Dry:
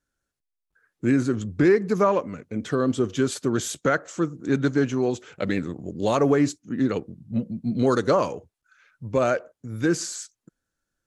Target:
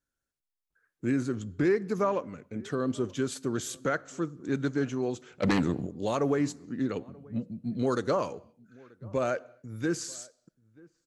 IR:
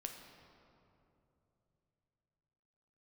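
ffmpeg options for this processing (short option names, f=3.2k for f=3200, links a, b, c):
-filter_complex "[0:a]asplit=3[a][b][c];[a]afade=t=out:st=5.42:d=0.02[d];[b]aeval=exprs='0.266*sin(PI/2*2.51*val(0)/0.266)':c=same,afade=t=in:st=5.42:d=0.02,afade=t=out:st=5.85:d=0.02[e];[c]afade=t=in:st=5.85:d=0.02[f];[d][e][f]amix=inputs=3:normalize=0,asplit=2[g][h];[h]adelay=932.9,volume=-25dB,highshelf=f=4k:g=-21[i];[g][i]amix=inputs=2:normalize=0,asplit=2[j][k];[1:a]atrim=start_sample=2205,afade=t=out:st=0.33:d=0.01,atrim=end_sample=14994,highshelf=f=5k:g=11[l];[k][l]afir=irnorm=-1:irlink=0,volume=-16dB[m];[j][m]amix=inputs=2:normalize=0,volume=-8dB"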